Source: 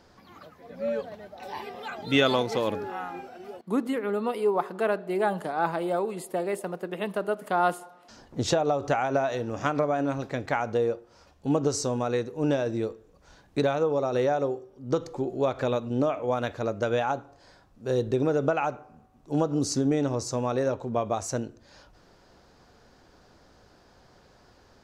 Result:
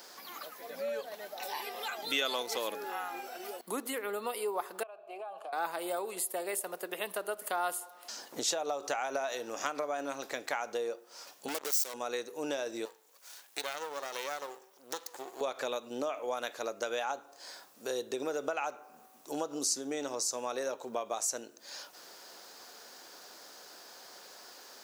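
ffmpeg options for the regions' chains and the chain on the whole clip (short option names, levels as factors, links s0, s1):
-filter_complex "[0:a]asettb=1/sr,asplit=3[s0][s1][s2];[s0]atrim=end=4.834[s3];[s1]atrim=start=4.83:end=5.53,asetpts=PTS-STARTPTS,afade=t=in:d=0.004:c=qsin,afade=t=out:st=0.696:d=0.004:c=qsin,asplit=3[s4][s5][s6];[s4]bandpass=f=730:t=q:w=8,volume=1[s7];[s5]bandpass=f=1090:t=q:w=8,volume=0.501[s8];[s6]bandpass=f=2440:t=q:w=8,volume=0.355[s9];[s7][s8][s9]amix=inputs=3:normalize=0,acompressor=threshold=0.01:ratio=5:attack=3.2:release=140:knee=1:detection=peak[s10];[s2]atrim=start=5.526[s11];[s3][s10]acrossfade=d=0.004:c1=hsin:c2=qsin[s12];[s12][s11]acrossfade=d=0.004:c1=qsin:c2=hsin,asettb=1/sr,asplit=3[s13][s14][s15];[s13]atrim=end=11.484[s16];[s14]atrim=start=11.48:end=11.94,asetpts=PTS-STARTPTS,afade=t=in:d=0.004:c=qsin,afade=t=out:st=0.456:d=0.004:c=qsin,equalizer=f=110:w=0.48:g=-13,asoftclip=type=hard:threshold=0.0398,acrusher=bits=4:mix=0:aa=0.5[s17];[s15]atrim=start=11.936[s18];[s16][s17]acrossfade=d=0.004:c1=hsin:c2=qsin[s19];[s19][s18]acrossfade=d=0.004:c1=qsin:c2=hsin,asettb=1/sr,asplit=3[s20][s21][s22];[s20]atrim=end=12.854[s23];[s21]atrim=start=12.85:end=15.41,asetpts=PTS-STARTPTS,afade=t=in:d=0.004:c=qsin,afade=t=out:st=2.556:d=0.004:c=qsin,highpass=f=840:p=1,aeval=exprs='max(val(0),0)':c=same[s24];[s22]atrim=start=15.406[s25];[s23][s24]acrossfade=d=0.004:c1=hsin:c2=qsin[s26];[s26][s25]acrossfade=d=0.004:c1=qsin:c2=hsin,highpass=290,aemphasis=mode=production:type=riaa,acompressor=threshold=0.00501:ratio=2,volume=1.78"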